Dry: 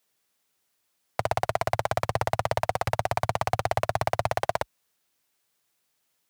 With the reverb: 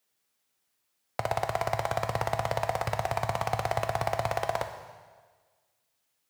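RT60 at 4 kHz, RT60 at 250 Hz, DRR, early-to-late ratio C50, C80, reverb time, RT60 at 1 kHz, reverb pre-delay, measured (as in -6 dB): 1.4 s, 1.5 s, 6.5 dB, 9.0 dB, 10.0 dB, 1.5 s, 1.5 s, 5 ms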